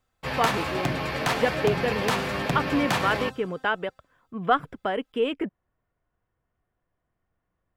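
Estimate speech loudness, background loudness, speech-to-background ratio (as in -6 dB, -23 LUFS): -28.0 LUFS, -27.5 LUFS, -0.5 dB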